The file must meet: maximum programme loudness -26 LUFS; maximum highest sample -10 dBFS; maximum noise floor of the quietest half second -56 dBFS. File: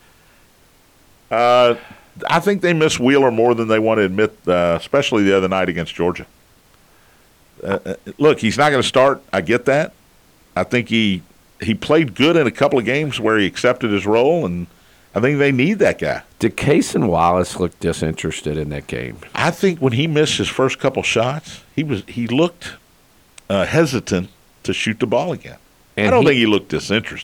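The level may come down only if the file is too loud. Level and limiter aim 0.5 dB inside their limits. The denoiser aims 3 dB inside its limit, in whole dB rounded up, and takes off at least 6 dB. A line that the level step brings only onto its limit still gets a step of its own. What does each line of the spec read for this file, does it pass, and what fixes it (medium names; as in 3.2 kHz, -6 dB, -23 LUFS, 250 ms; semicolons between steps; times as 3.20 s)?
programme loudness -17.0 LUFS: fail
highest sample -4.5 dBFS: fail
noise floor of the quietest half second -52 dBFS: fail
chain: trim -9.5 dB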